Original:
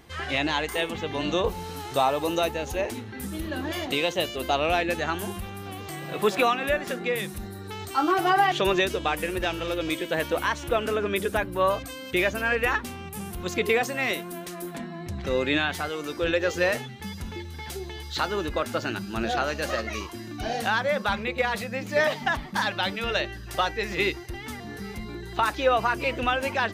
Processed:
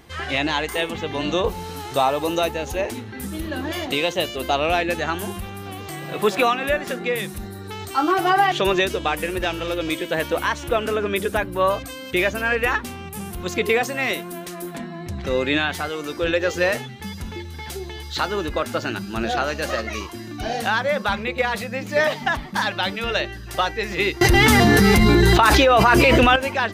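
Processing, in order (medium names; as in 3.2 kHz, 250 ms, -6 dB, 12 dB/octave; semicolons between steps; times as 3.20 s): 24.21–26.36 s: level flattener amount 100%; trim +3.5 dB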